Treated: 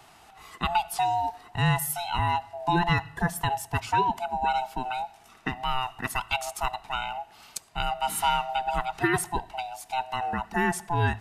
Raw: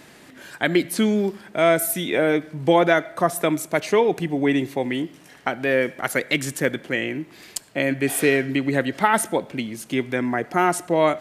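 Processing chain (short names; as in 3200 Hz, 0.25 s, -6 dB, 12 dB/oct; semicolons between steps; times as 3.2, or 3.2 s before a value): band-swap scrambler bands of 500 Hz; gain -6 dB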